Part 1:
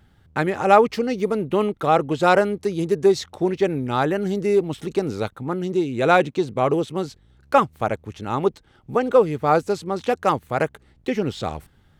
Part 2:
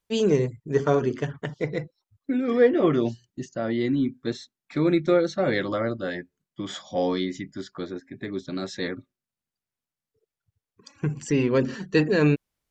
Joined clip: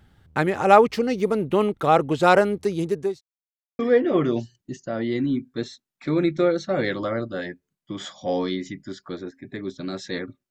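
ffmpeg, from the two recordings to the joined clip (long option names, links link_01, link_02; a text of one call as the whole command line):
ffmpeg -i cue0.wav -i cue1.wav -filter_complex "[0:a]apad=whole_dur=10.5,atrim=end=10.5,asplit=2[link_01][link_02];[link_01]atrim=end=3.21,asetpts=PTS-STARTPTS,afade=type=out:start_time=2.58:duration=0.63:curve=qsin[link_03];[link_02]atrim=start=3.21:end=3.79,asetpts=PTS-STARTPTS,volume=0[link_04];[1:a]atrim=start=2.48:end=9.19,asetpts=PTS-STARTPTS,afade=type=in:duration=0.004:curve=hsin[link_05];[link_03][link_04][link_05]concat=n=3:v=0:a=1" out.wav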